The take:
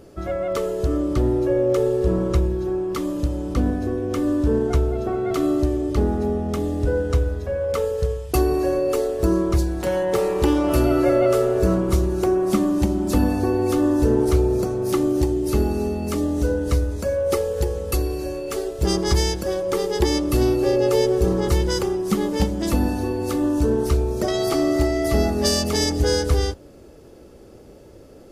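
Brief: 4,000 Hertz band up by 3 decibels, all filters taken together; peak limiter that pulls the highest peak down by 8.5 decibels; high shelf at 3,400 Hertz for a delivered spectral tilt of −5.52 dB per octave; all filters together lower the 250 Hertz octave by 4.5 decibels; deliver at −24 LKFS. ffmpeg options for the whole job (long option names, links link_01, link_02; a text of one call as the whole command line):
ffmpeg -i in.wav -af "equalizer=frequency=250:width_type=o:gain=-6.5,highshelf=frequency=3400:gain=-5.5,equalizer=frequency=4000:width_type=o:gain=8.5,volume=1dB,alimiter=limit=-13.5dB:level=0:latency=1" out.wav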